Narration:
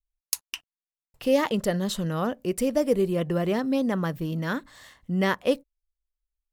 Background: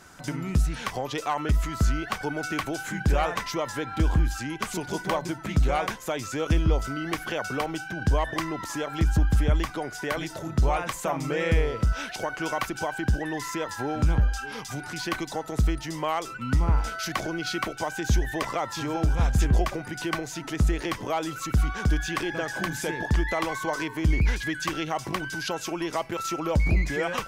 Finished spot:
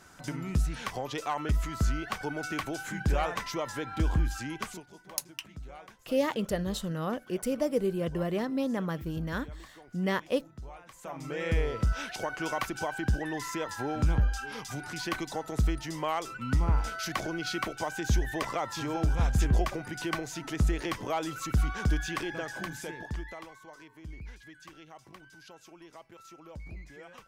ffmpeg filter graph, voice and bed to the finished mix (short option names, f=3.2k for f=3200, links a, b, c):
-filter_complex "[0:a]adelay=4850,volume=-5.5dB[a];[1:a]volume=14dB,afade=t=out:st=4.59:d=0.26:silence=0.133352,afade=t=in:st=10.89:d=0.85:silence=0.11885,afade=t=out:st=21.89:d=1.66:silence=0.125893[b];[a][b]amix=inputs=2:normalize=0"